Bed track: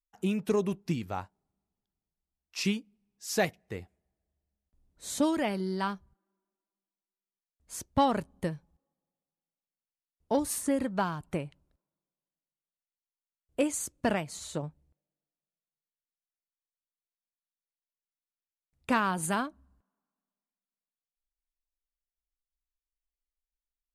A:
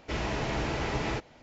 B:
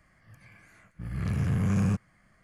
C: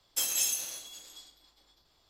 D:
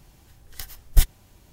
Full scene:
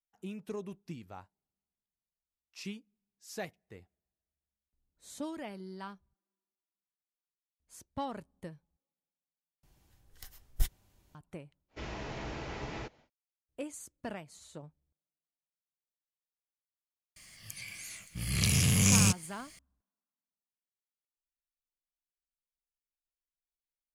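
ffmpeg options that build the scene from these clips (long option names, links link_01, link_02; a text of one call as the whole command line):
ffmpeg -i bed.wav -i cue0.wav -i cue1.wav -i cue2.wav -i cue3.wav -filter_complex "[0:a]volume=-12.5dB[link_01];[1:a]aresample=16000,aresample=44100[link_02];[2:a]aexciter=amount=10:drive=6.8:freq=2400[link_03];[link_01]asplit=2[link_04][link_05];[link_04]atrim=end=9.634[link_06];[4:a]atrim=end=1.52,asetpts=PTS-STARTPTS,volume=-13.5dB[link_07];[link_05]atrim=start=11.146[link_08];[link_02]atrim=end=1.42,asetpts=PTS-STARTPTS,volume=-9.5dB,afade=type=in:duration=0.1,afade=type=out:start_time=1.32:duration=0.1,adelay=11680[link_09];[link_03]atrim=end=2.43,asetpts=PTS-STARTPTS,volume=-1dB,afade=type=in:duration=0.004:curve=hsin,afade=type=out:start_time=2.426:duration=0.004:curve=hsin,adelay=756756S[link_10];[link_06][link_07]acrossfade=duration=0.004:curve1=hsin:curve2=hsin[link_11];[link_11][link_08]acrossfade=duration=0.004:curve1=hsin:curve2=hsin[link_12];[link_12][link_09][link_10]amix=inputs=3:normalize=0" out.wav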